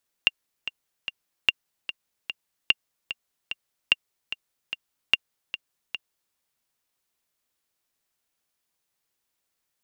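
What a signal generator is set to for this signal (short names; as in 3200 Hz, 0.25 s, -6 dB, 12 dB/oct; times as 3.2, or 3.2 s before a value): metronome 148 bpm, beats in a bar 3, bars 5, 2790 Hz, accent 12.5 dB -4 dBFS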